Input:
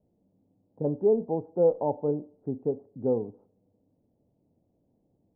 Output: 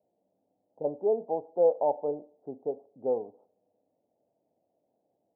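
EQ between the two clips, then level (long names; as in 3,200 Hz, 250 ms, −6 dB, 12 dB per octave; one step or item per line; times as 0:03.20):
resonant band-pass 690 Hz, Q 2.8
+5.5 dB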